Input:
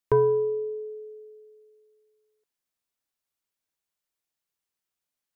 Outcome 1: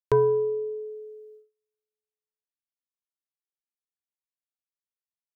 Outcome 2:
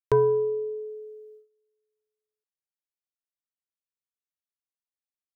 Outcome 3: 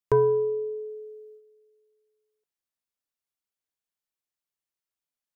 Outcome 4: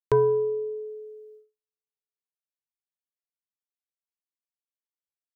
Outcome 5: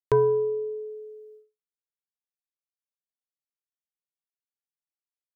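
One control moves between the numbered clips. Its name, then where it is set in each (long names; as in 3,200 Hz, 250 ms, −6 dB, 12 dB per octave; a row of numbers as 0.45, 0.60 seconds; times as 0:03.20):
noise gate, range: −31, −19, −6, −47, −59 decibels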